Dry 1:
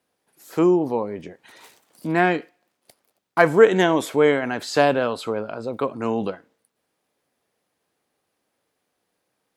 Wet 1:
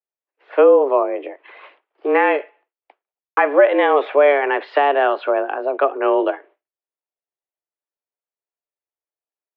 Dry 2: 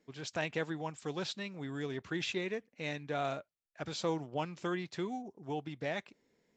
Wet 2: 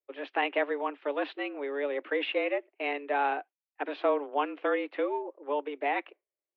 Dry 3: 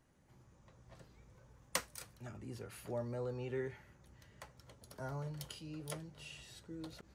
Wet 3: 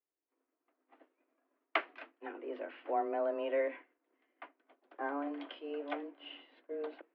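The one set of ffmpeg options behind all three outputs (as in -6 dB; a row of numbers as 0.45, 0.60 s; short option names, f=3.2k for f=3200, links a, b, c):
-af "agate=range=-33dB:threshold=-48dB:ratio=3:detection=peak,alimiter=limit=-10.5dB:level=0:latency=1:release=227,highpass=f=160:t=q:w=0.5412,highpass=f=160:t=q:w=1.307,lowpass=f=2.8k:t=q:w=0.5176,lowpass=f=2.8k:t=q:w=0.7071,lowpass=f=2.8k:t=q:w=1.932,afreqshift=140,volume=7.5dB"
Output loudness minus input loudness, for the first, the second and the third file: +4.0, +7.0, +6.0 LU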